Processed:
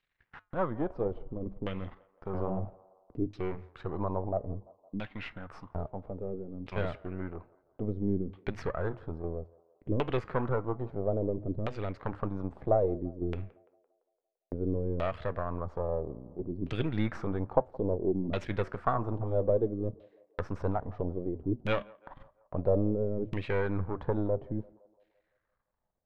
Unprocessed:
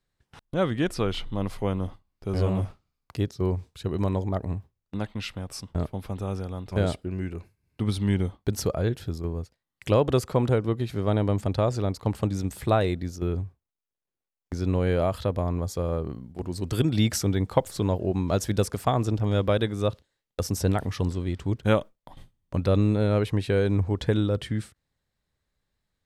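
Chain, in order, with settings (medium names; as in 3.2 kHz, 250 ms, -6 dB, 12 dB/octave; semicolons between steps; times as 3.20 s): partial rectifier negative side -12 dB; flange 0.34 Hz, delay 3.9 ms, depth 3.9 ms, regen -86%; LFO low-pass saw down 0.6 Hz 260–2800 Hz; band-passed feedback delay 170 ms, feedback 54%, band-pass 680 Hz, level -22.5 dB; tape noise reduction on one side only encoder only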